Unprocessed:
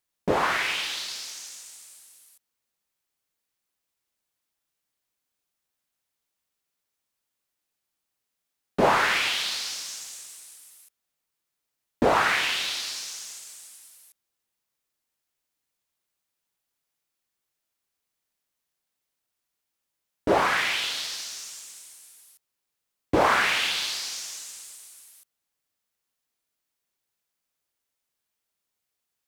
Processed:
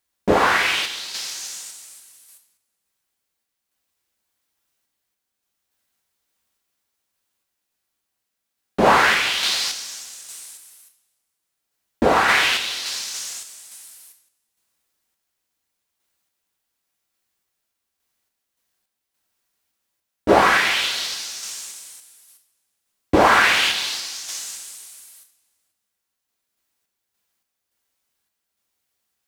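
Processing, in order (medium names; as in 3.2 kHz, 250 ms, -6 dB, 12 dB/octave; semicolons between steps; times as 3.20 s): two-slope reverb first 0.47 s, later 1.9 s, from -18 dB, DRR 4 dB; random-step tremolo; trim +7 dB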